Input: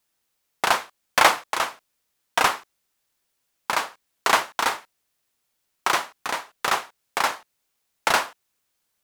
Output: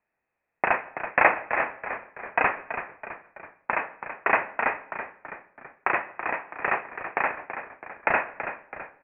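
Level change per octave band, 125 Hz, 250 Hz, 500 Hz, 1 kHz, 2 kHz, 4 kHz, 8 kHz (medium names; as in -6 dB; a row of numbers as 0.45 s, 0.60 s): -0.5 dB, -0.5 dB, +0.5 dB, -3.0 dB, 0.0 dB, under -25 dB, under -40 dB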